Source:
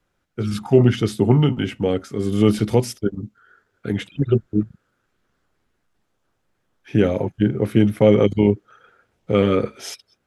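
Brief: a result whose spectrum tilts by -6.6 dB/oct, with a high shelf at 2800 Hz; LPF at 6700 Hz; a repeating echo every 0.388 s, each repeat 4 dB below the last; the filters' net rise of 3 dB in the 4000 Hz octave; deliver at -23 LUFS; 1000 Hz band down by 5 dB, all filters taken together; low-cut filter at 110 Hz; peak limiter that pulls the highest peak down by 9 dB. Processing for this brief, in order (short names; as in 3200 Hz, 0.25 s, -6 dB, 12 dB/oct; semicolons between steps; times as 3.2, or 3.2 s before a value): HPF 110 Hz; LPF 6700 Hz; bell 1000 Hz -7 dB; high shelf 2800 Hz -3.5 dB; bell 4000 Hz +8.5 dB; limiter -12 dBFS; feedback echo 0.388 s, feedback 63%, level -4 dB; gain +0.5 dB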